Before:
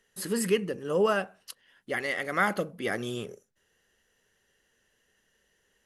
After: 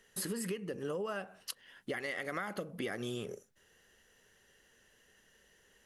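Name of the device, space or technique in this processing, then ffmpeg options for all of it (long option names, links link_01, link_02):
serial compression, peaks first: -af "acompressor=threshold=-33dB:ratio=6,acompressor=threshold=-42dB:ratio=2.5,volume=4.5dB"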